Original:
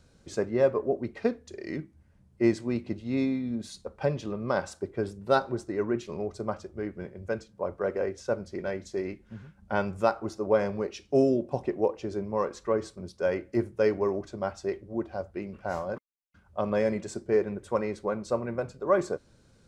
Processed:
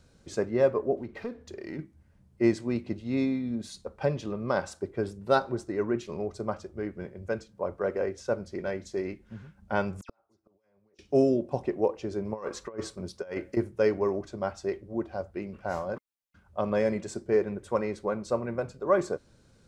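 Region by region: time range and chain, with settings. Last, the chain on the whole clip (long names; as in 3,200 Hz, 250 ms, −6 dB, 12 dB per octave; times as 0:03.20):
0:00.97–0:01.79: high-shelf EQ 6,500 Hz −11.5 dB + downward compressor 2 to 1, threshold −42 dBFS + leveller curve on the samples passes 1
0:10.01–0:10.99: compressor whose output falls as the input rises −32 dBFS + all-pass dispersion lows, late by 79 ms, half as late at 2,900 Hz + gate with flip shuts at −30 dBFS, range −38 dB
0:12.25–0:13.57: low-shelf EQ 380 Hz −3.5 dB + compressor whose output falls as the input rises −33 dBFS, ratio −0.5
whole clip: no processing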